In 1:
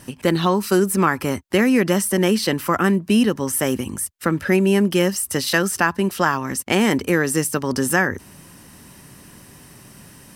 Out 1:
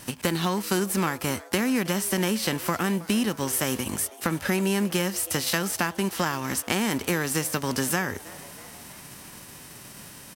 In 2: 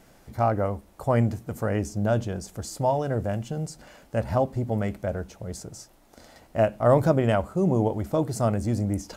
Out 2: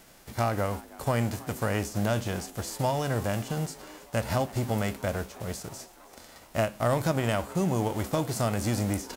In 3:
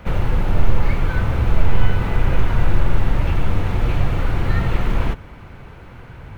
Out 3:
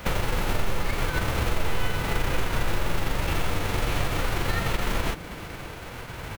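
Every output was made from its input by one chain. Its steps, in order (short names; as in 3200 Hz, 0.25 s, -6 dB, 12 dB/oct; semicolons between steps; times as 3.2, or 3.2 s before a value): spectral whitening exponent 0.6; compressor 3:1, threshold -24 dBFS; on a send: frequency-shifting echo 0.321 s, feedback 62%, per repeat +150 Hz, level -20.5 dB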